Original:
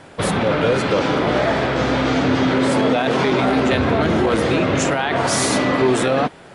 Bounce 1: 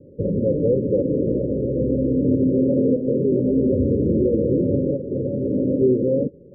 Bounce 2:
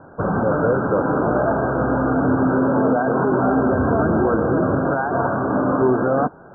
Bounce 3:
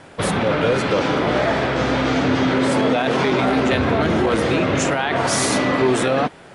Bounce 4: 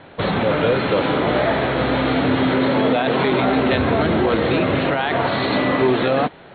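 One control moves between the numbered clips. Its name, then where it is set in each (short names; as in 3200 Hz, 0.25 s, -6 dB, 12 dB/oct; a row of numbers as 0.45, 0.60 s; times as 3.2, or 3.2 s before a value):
Chebyshev low-pass, frequency: 570, 1600, 11000, 4300 Hz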